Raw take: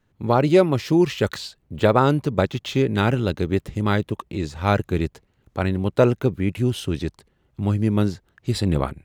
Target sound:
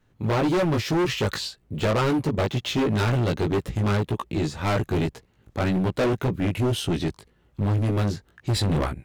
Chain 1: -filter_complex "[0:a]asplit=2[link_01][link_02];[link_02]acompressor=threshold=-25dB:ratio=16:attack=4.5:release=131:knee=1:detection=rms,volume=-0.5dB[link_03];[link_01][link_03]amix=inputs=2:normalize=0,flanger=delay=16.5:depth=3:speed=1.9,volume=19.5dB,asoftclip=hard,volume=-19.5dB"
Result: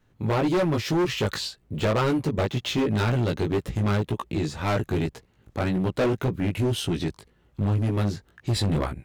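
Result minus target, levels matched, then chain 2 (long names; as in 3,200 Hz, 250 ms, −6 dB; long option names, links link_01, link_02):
downward compressor: peak gain reduction +11 dB
-filter_complex "[0:a]asplit=2[link_01][link_02];[link_02]acompressor=threshold=-13.5dB:ratio=16:attack=4.5:release=131:knee=1:detection=rms,volume=-0.5dB[link_03];[link_01][link_03]amix=inputs=2:normalize=0,flanger=delay=16.5:depth=3:speed=1.9,volume=19.5dB,asoftclip=hard,volume=-19.5dB"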